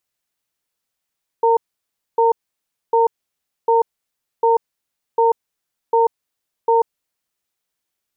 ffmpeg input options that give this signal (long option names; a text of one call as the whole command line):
ffmpeg -f lavfi -i "aevalsrc='0.2*(sin(2*PI*460*t)+sin(2*PI*916*t))*clip(min(mod(t,0.75),0.14-mod(t,0.75))/0.005,0,1)':duration=5.74:sample_rate=44100" out.wav